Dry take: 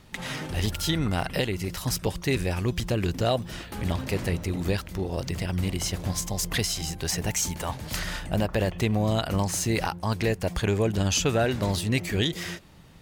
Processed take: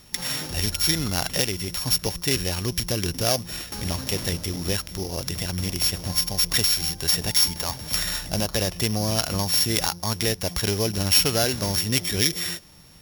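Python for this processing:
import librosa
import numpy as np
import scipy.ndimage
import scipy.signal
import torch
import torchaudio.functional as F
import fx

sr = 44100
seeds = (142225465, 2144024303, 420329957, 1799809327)

y = np.r_[np.sort(x[:len(x) // 8 * 8].reshape(-1, 8), axis=1).ravel(), x[len(x) // 8 * 8:]]
y = fx.high_shelf(y, sr, hz=2300.0, db=11.5)
y = F.gain(torch.from_numpy(y), -1.5).numpy()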